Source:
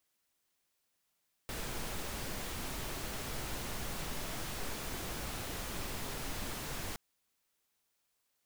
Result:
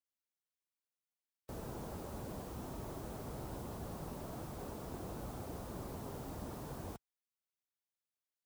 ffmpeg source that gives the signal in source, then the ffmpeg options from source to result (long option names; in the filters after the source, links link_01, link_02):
-f lavfi -i "anoisesrc=color=pink:amplitude=0.0543:duration=5.47:sample_rate=44100:seed=1"
-filter_complex "[0:a]highpass=53,afftdn=noise_reduction=19:noise_floor=-49,acrossover=split=1200[link_01][link_02];[link_02]aeval=exprs='(mod(447*val(0)+1,2)-1)/447':channel_layout=same[link_03];[link_01][link_03]amix=inputs=2:normalize=0"